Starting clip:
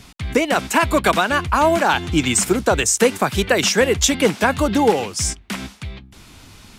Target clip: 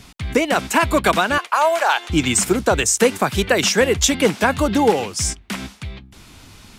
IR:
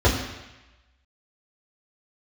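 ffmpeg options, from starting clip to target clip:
-filter_complex "[0:a]asettb=1/sr,asplit=3[a][b][c];[a]atrim=end=1.384[d];[b]atrim=start=1.38:end=2.1,asetpts=PTS-STARTPTS,afade=t=in:d=0.004:c=qsin,afade=t=out:st=0.716:d=0.004:c=qsin,highpass=f=520:w=0.5412,highpass=f=520:w=1.3066[e];[c]atrim=start=2.096[f];[d][e]acrossfade=d=0.004:c1=hsin:c2=qsin[g];[g][f]acrossfade=d=0.004:c1=qsin:c2=hsin"

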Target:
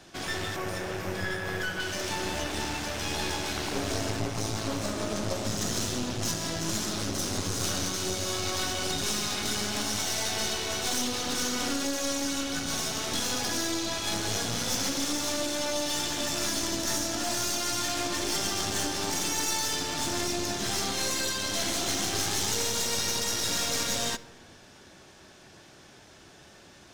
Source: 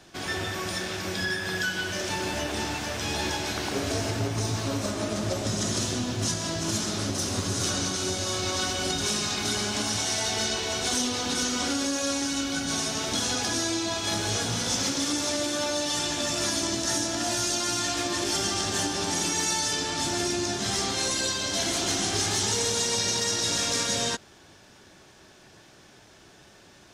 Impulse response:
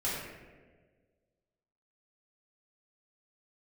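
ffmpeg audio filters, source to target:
-filter_complex "[0:a]asettb=1/sr,asplit=3[a][b][c];[a]atrim=end=0.564[d];[b]atrim=start=0.56:end=1.8,asetpts=PTS-STARTPTS,afade=t=in:d=0.004:c=qsin,afade=t=out:st=1.236:d=0.004:c=qsin,equalizer=f=125:t=o:w=1:g=6,equalizer=f=250:t=o:w=1:g=-5,equalizer=f=500:t=o:w=1:g=6,equalizer=f=4k:t=o:w=1:g=-9,equalizer=f=8k:t=o:w=1:g=-5[e];[c]atrim=start=1.796[f];[d][e]acrossfade=d=0.004:c1=hsin:c2=qsin[g];[g][f]acrossfade=d=0.004:c1=qsin:c2=hsin,aeval=exprs='clip(val(0),-1,0.0158)':c=same,asplit=2[h][i];[1:a]atrim=start_sample=2205[j];[i][j]afir=irnorm=-1:irlink=0,volume=-21dB[k];[h][k]amix=inputs=2:normalize=0"

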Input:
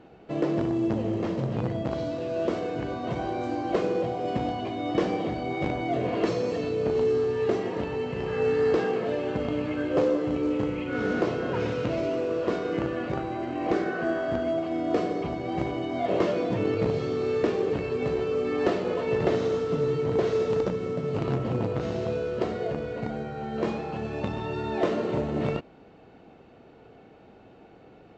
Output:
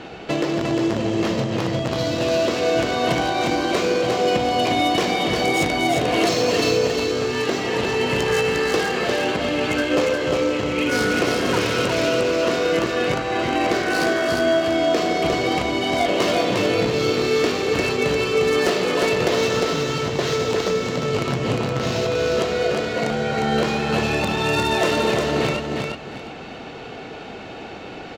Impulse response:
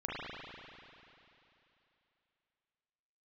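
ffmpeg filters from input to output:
-filter_complex "[0:a]asettb=1/sr,asplit=3[a][b][c];[a]atrim=end=22.624[d];[b]atrim=start=22.62:end=23.09,asetpts=PTS-STARTPTS,afade=t=in:d=0.004:c=qsin,afade=t=out:st=0.466:d=0.004:c=qsin,highpass=140[e];[c]atrim=start=23.086[f];[d][e]acrossfade=d=0.004:c1=hsin:c2=qsin[g];[g][f]acrossfade=d=0.004:c1=qsin:c2=hsin,asplit=2[h][i];[i]acompressor=threshold=-40dB:ratio=6,volume=2dB[j];[h][j]amix=inputs=2:normalize=0,alimiter=limit=-20dB:level=0:latency=1:release=467,acrossover=split=1100[k][l];[l]aeval=exprs='0.0158*(abs(mod(val(0)/0.0158+3,4)-2)-1)':c=same[m];[k][m]amix=inputs=2:normalize=0,crystalizer=i=10:c=0,adynamicsmooth=sensitivity=6.5:basefreq=5.2k,aecho=1:1:354|708|1062|1416:0.668|0.167|0.0418|0.0104,volume=5.5dB"

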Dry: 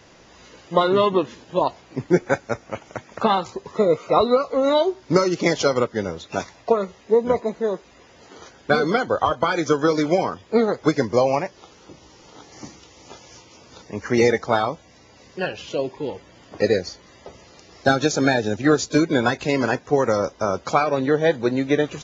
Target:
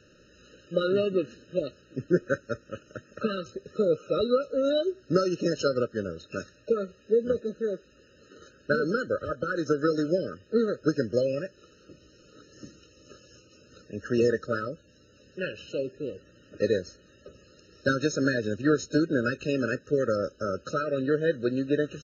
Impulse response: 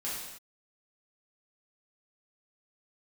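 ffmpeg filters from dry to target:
-af "aresample=16000,aresample=44100,afftfilt=real='re*eq(mod(floor(b*sr/1024/620),2),0)':imag='im*eq(mod(floor(b*sr/1024/620),2),0)':win_size=1024:overlap=0.75,volume=-6dB"

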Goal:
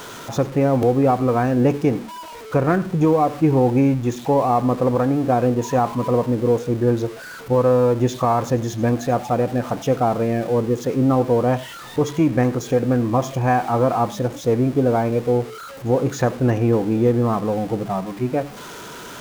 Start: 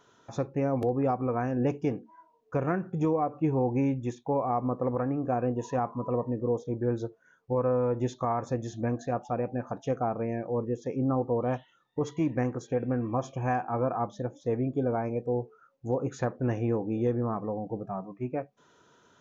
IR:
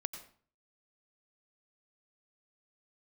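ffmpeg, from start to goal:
-filter_complex "[0:a]aeval=exprs='val(0)+0.5*0.00891*sgn(val(0))':c=same,asplit=2[a][b];[1:a]atrim=start_sample=2205,afade=t=out:st=0.15:d=0.01,atrim=end_sample=7056[c];[b][c]afir=irnorm=-1:irlink=0,volume=-0.5dB[d];[a][d]amix=inputs=2:normalize=0,volume=4.5dB"

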